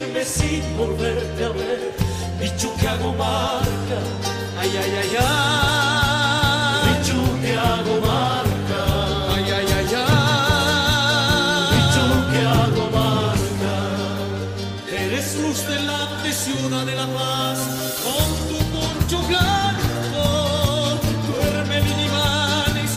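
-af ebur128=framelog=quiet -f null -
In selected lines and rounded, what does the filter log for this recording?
Integrated loudness:
  I:         -19.8 LUFS
  Threshold: -29.8 LUFS
Loudness range:
  LRA:         5.6 LU
  Threshold: -39.7 LUFS
  LRA low:   -22.7 LUFS
  LRA high:  -17.1 LUFS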